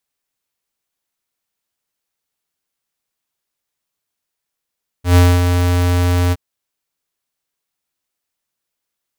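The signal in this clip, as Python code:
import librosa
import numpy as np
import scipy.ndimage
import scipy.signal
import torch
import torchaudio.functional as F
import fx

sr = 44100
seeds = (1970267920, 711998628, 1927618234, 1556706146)

y = fx.adsr_tone(sr, wave='square', hz=88.6, attack_ms=118.0, decay_ms=244.0, sustain_db=-6.5, held_s=1.28, release_ms=38.0, level_db=-7.5)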